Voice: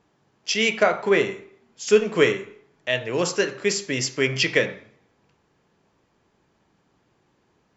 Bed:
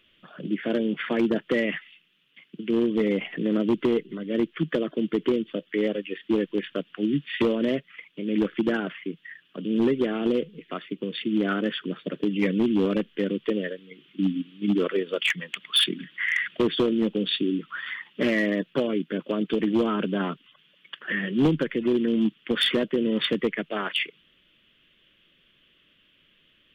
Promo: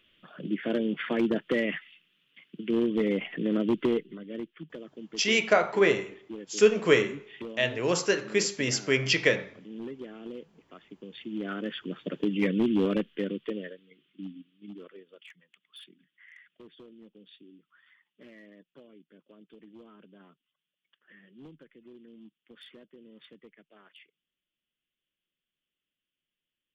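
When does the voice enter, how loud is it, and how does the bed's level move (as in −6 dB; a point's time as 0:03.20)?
4.70 s, −3.0 dB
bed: 0:03.92 −3 dB
0:04.62 −17 dB
0:10.74 −17 dB
0:12.16 −2.5 dB
0:13.00 −2.5 dB
0:15.40 −28.5 dB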